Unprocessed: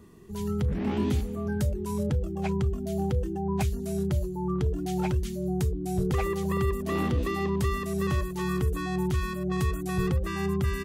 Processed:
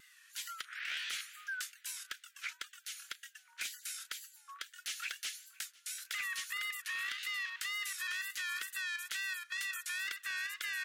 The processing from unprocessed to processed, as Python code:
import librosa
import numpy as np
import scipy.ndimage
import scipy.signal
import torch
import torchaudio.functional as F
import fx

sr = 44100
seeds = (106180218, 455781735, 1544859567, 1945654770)

p1 = scipy.signal.sosfilt(scipy.signal.butter(12, 1400.0, 'highpass', fs=sr, output='sos'), x)
p2 = fx.high_shelf(p1, sr, hz=7200.0, db=-6.5)
p3 = fx.over_compress(p2, sr, threshold_db=-45.0, ratio=-0.5)
p4 = p2 + (p3 * 10.0 ** (0.5 / 20.0))
p5 = fx.wow_flutter(p4, sr, seeds[0], rate_hz=2.1, depth_cents=100.0)
p6 = np.clip(10.0 ** (32.0 / 20.0) * p5, -1.0, 1.0) / 10.0 ** (32.0 / 20.0)
y = p6 + fx.echo_feedback(p6, sr, ms=506, feedback_pct=39, wet_db=-23.5, dry=0)